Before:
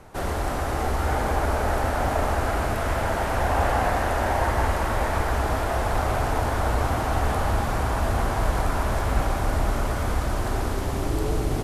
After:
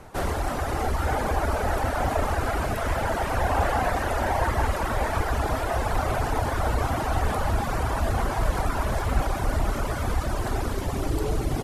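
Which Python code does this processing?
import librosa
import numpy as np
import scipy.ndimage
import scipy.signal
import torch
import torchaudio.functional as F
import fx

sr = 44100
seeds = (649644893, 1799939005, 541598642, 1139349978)

p1 = fx.dereverb_blind(x, sr, rt60_s=1.1)
p2 = 10.0 ** (-26.0 / 20.0) * np.tanh(p1 / 10.0 ** (-26.0 / 20.0))
y = p1 + F.gain(torch.from_numpy(p2), -10.0).numpy()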